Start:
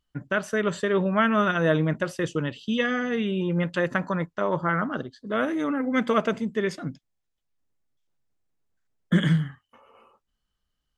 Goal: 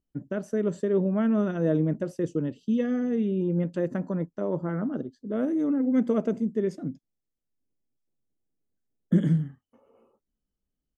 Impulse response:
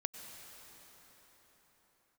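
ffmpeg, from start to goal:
-af "firequalizer=gain_entry='entry(100,0);entry(250,8);entry(1100,-11);entry(3500,-14);entry(5700,-5)':delay=0.05:min_phase=1,volume=-5dB"

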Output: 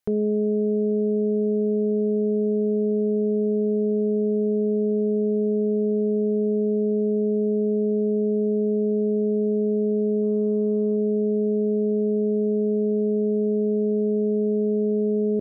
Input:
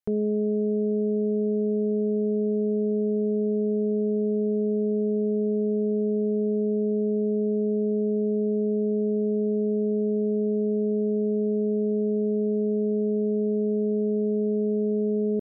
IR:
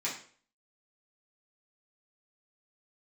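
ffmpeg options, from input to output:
-filter_complex "[0:a]asplit=3[a][b][c];[a]afade=t=out:st=10.22:d=0.02[d];[b]acontrast=39,afade=t=in:st=10.22:d=0.02,afade=t=out:st=10.95:d=0.02[e];[c]afade=t=in:st=10.95:d=0.02[f];[d][e][f]amix=inputs=3:normalize=0,alimiter=limit=-24dB:level=0:latency=1,asplit=2[g][h];[1:a]atrim=start_sample=2205,asetrate=79380,aresample=44100[i];[h][i]afir=irnorm=-1:irlink=0,volume=-14dB[j];[g][j]amix=inputs=2:normalize=0,volume=7.5dB"

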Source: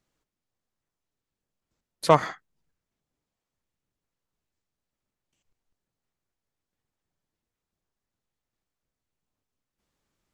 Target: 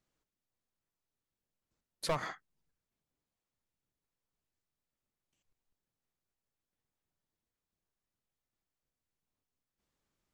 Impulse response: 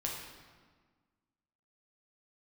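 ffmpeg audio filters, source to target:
-af "acompressor=threshold=-16dB:ratio=6,asoftclip=type=hard:threshold=-21.5dB,volume=-5.5dB"

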